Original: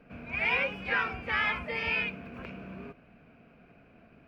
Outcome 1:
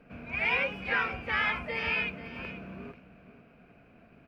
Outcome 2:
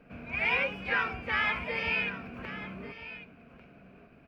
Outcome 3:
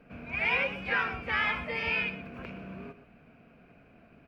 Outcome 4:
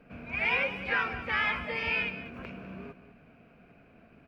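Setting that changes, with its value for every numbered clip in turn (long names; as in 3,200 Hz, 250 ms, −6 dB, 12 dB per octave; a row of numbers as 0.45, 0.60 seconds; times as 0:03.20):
single-tap delay, delay time: 487, 1,146, 120, 200 milliseconds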